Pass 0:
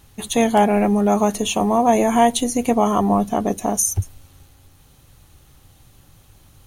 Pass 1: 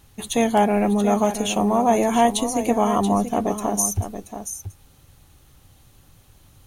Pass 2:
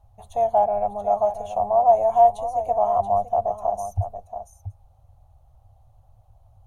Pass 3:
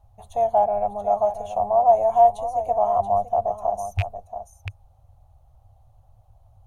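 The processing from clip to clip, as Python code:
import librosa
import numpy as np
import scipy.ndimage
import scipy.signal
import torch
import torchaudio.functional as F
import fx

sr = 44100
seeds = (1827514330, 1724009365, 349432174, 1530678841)

y1 = x + 10.0 ** (-10.0 / 20.0) * np.pad(x, (int(680 * sr / 1000.0), 0))[:len(x)]
y1 = F.gain(torch.from_numpy(y1), -2.5).numpy()
y2 = fx.curve_eq(y1, sr, hz=(110.0, 240.0, 380.0, 680.0, 1700.0), db=(0, -29, -23, 6, -24))
y3 = fx.rattle_buzz(y2, sr, strikes_db=-25.0, level_db=-17.0)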